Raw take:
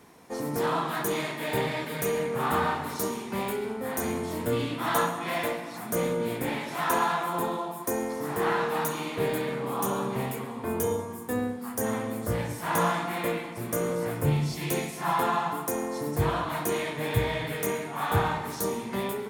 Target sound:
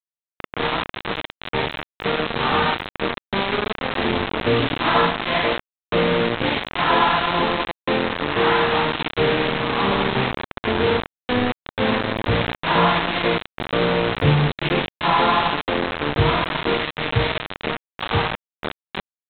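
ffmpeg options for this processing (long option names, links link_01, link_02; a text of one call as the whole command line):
ffmpeg -i in.wav -af "dynaudnorm=framelen=310:gausssize=17:maxgain=5dB,aresample=8000,acrusher=bits=3:mix=0:aa=0.000001,aresample=44100,volume=3dB" out.wav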